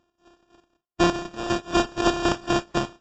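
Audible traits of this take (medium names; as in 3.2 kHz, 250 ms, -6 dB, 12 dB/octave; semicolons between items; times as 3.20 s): a buzz of ramps at a fixed pitch in blocks of 128 samples; chopped level 4 Hz, depth 65%, duty 40%; aliases and images of a low sample rate 2.1 kHz, jitter 0%; AAC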